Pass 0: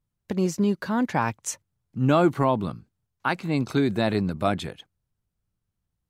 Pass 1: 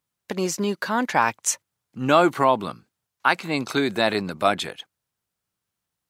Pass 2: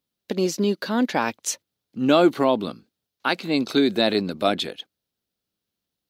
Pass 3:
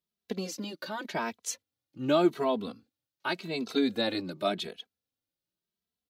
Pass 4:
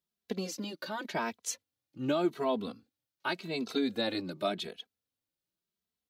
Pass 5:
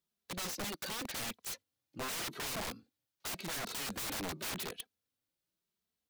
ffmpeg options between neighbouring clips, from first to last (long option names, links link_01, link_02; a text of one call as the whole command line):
ffmpeg -i in.wav -af "highpass=frequency=790:poles=1,volume=8dB" out.wav
ffmpeg -i in.wav -af "equalizer=frequency=125:width_type=o:width=1:gain=-5,equalizer=frequency=250:width_type=o:width=1:gain=6,equalizer=frequency=500:width_type=o:width=1:gain=3,equalizer=frequency=1000:width_type=o:width=1:gain=-7,equalizer=frequency=2000:width_type=o:width=1:gain=-4,equalizer=frequency=4000:width_type=o:width=1:gain=6,equalizer=frequency=8000:width_type=o:width=1:gain=-7" out.wav
ffmpeg -i in.wav -filter_complex "[0:a]asplit=2[link_01][link_02];[link_02]adelay=2.7,afreqshift=0.88[link_03];[link_01][link_03]amix=inputs=2:normalize=1,volume=-5.5dB" out.wav
ffmpeg -i in.wav -af "alimiter=limit=-18.5dB:level=0:latency=1:release=340,volume=-1dB" out.wav
ffmpeg -i in.wav -af "aeval=exprs='(mod(56.2*val(0)+1,2)-1)/56.2':channel_layout=same,volume=1dB" out.wav